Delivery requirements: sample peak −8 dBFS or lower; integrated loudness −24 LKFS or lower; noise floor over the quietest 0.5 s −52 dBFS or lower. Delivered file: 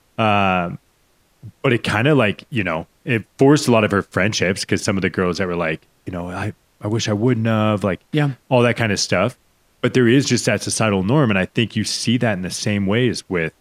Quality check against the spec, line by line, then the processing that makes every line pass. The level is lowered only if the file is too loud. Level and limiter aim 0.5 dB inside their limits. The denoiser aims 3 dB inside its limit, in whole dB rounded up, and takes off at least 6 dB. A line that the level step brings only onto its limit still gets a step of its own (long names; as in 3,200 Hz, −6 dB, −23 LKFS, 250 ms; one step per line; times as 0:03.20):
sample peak −2.0 dBFS: out of spec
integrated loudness −18.5 LKFS: out of spec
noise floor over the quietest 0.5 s −60 dBFS: in spec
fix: level −6 dB
brickwall limiter −8.5 dBFS